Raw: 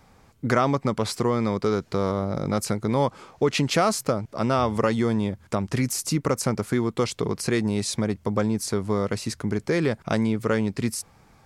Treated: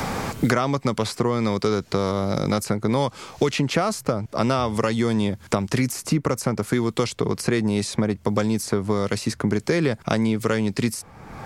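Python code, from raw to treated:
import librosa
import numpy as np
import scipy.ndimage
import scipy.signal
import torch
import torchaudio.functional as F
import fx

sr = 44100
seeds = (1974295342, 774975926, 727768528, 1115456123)

y = fx.band_squash(x, sr, depth_pct=100)
y = F.gain(torch.from_numpy(y), 1.0).numpy()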